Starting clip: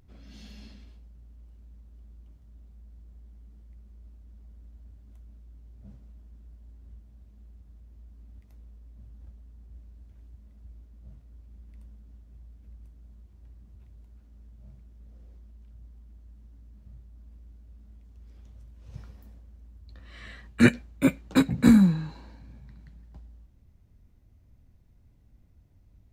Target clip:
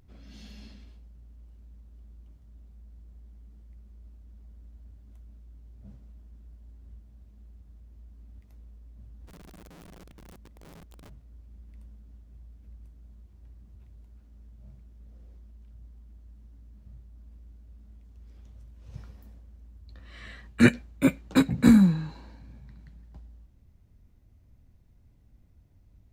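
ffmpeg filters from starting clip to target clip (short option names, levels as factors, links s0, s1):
-filter_complex "[0:a]asplit=3[s0][s1][s2];[s0]afade=t=out:st=9.27:d=0.02[s3];[s1]aeval=exprs='(mod(188*val(0)+1,2)-1)/188':c=same,afade=t=in:st=9.27:d=0.02,afade=t=out:st=11.08:d=0.02[s4];[s2]afade=t=in:st=11.08:d=0.02[s5];[s3][s4][s5]amix=inputs=3:normalize=0"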